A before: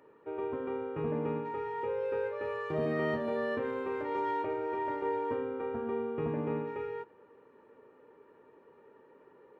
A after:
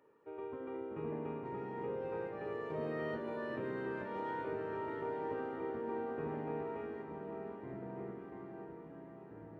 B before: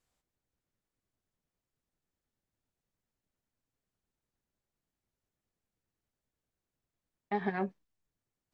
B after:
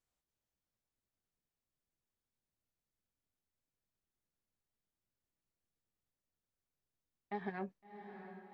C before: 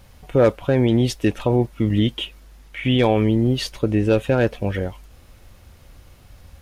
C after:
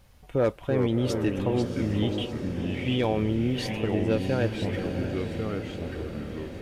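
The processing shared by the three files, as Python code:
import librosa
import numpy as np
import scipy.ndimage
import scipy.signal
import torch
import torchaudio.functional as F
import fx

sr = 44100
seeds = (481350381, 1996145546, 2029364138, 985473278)

y = fx.echo_pitch(x, sr, ms=284, semitones=-3, count=2, db_per_echo=-6.0)
y = fx.echo_diffused(y, sr, ms=691, feedback_pct=65, wet_db=-9.0)
y = F.gain(torch.from_numpy(y), -8.5).numpy()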